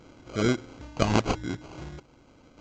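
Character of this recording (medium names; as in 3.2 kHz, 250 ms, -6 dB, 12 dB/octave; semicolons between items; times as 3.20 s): random-step tremolo; aliases and images of a low sample rate 1.8 kHz, jitter 0%; µ-law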